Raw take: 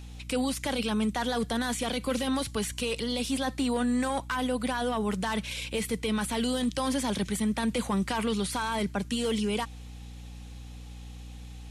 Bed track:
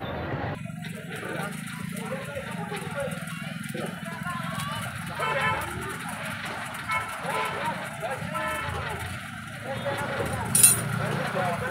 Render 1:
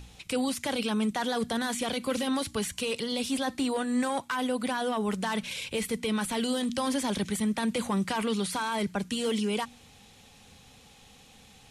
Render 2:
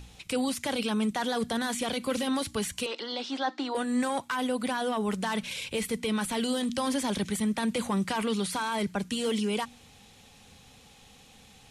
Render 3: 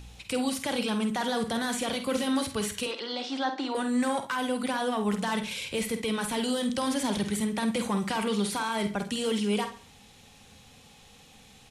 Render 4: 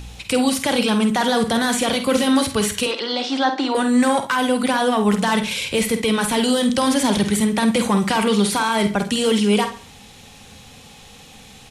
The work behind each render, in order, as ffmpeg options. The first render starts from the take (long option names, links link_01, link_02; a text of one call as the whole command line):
ffmpeg -i in.wav -af "bandreject=frequency=60:width_type=h:width=4,bandreject=frequency=120:width_type=h:width=4,bandreject=frequency=180:width_type=h:width=4,bandreject=frequency=240:width_type=h:width=4,bandreject=frequency=300:width_type=h:width=4" out.wav
ffmpeg -i in.wav -filter_complex "[0:a]asettb=1/sr,asplit=3[link_01][link_02][link_03];[link_01]atrim=end=2.864[link_04];[link_02]atrim=start=2.86:end=3.75,asetpts=PTS-STARTPTS,afade=type=in:duration=0.004:curve=qsin,afade=type=out:start_time=0.886:duration=0.004:curve=qsin,highpass=frequency=310:width=0.5412,highpass=frequency=310:width=1.3066,equalizer=frequency=320:width_type=q:width=4:gain=5,equalizer=frequency=450:width_type=q:width=4:gain=-6,equalizer=frequency=830:width_type=q:width=4:gain=6,equalizer=frequency=1400:width_type=q:width=4:gain=5,equalizer=frequency=2500:width_type=q:width=4:gain=-6,lowpass=frequency=5200:width=0.5412,lowpass=frequency=5200:width=1.3066[link_05];[link_03]atrim=start=3.746[link_06];[link_04][link_05]acrossfade=duration=0.004:curve1=hsin:curve2=qsin[link_07];[link_07][link_06]acrossfade=duration=0.004:curve1=qsin:curve2=hsin" out.wav
ffmpeg -i in.wav -filter_complex "[0:a]asplit=2[link_01][link_02];[link_02]adelay=49,volume=-9dB[link_03];[link_01][link_03]amix=inputs=2:normalize=0,asplit=2[link_04][link_05];[link_05]adelay=68,lowpass=frequency=4700:poles=1,volume=-12.5dB,asplit=2[link_06][link_07];[link_07]adelay=68,lowpass=frequency=4700:poles=1,volume=0.35,asplit=2[link_08][link_09];[link_09]adelay=68,lowpass=frequency=4700:poles=1,volume=0.35,asplit=2[link_10][link_11];[link_11]adelay=68,lowpass=frequency=4700:poles=1,volume=0.35[link_12];[link_04][link_06][link_08][link_10][link_12]amix=inputs=5:normalize=0" out.wav
ffmpeg -i in.wav -af "volume=10.5dB" out.wav